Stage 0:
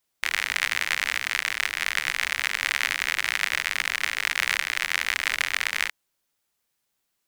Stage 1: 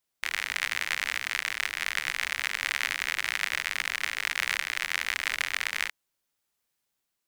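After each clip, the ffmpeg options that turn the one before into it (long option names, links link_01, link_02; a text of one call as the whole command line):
ffmpeg -i in.wav -af "dynaudnorm=framelen=190:gausssize=7:maxgain=3dB,volume=-5dB" out.wav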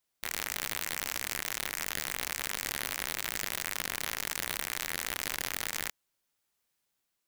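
ffmpeg -i in.wav -af "aeval=exprs='(mod(9.44*val(0)+1,2)-1)/9.44':channel_layout=same" out.wav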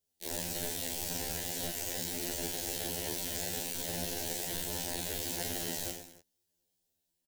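ffmpeg -i in.wav -filter_complex "[0:a]aecho=1:1:40|88|145.6|214.7|297.7:0.631|0.398|0.251|0.158|0.1,acrossover=split=290|430|2800[link_01][link_02][link_03][link_04];[link_03]acrusher=samples=36:mix=1:aa=0.000001[link_05];[link_01][link_02][link_05][link_04]amix=inputs=4:normalize=0,afftfilt=real='re*2*eq(mod(b,4),0)':imag='im*2*eq(mod(b,4),0)':win_size=2048:overlap=0.75" out.wav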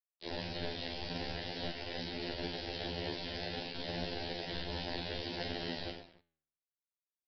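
ffmpeg -i in.wav -af "aresample=11025,aeval=exprs='sgn(val(0))*max(abs(val(0))-0.001,0)':channel_layout=same,aresample=44100,flanger=delay=6.8:depth=6.5:regen=87:speed=0.54:shape=triangular,volume=5.5dB" out.wav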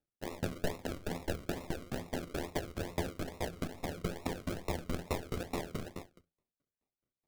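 ffmpeg -i in.wav -filter_complex "[0:a]acrossover=split=240[link_01][link_02];[link_02]acrusher=samples=40:mix=1:aa=0.000001:lfo=1:lforange=24:lforate=2.3[link_03];[link_01][link_03]amix=inputs=2:normalize=0,aeval=exprs='val(0)*pow(10,-26*if(lt(mod(4.7*n/s,1),2*abs(4.7)/1000),1-mod(4.7*n/s,1)/(2*abs(4.7)/1000),(mod(4.7*n/s,1)-2*abs(4.7)/1000)/(1-2*abs(4.7)/1000))/20)':channel_layout=same,volume=10dB" out.wav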